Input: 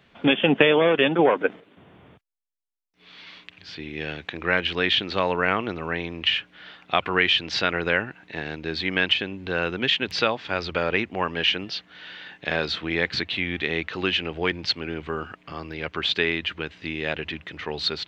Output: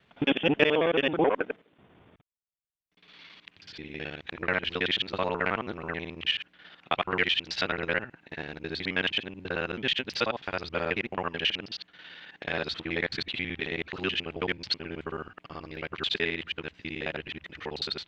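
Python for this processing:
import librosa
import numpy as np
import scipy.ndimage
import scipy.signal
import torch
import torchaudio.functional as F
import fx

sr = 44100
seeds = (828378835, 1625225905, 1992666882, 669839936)

y = fx.local_reverse(x, sr, ms=54.0)
y = fx.cheby_harmonics(y, sr, harmonics=(3, 4), levels_db=(-31, -38), full_scale_db=-2.0)
y = fx.transient(y, sr, attack_db=1, sustain_db=-4)
y = y * librosa.db_to_amplitude(-5.0)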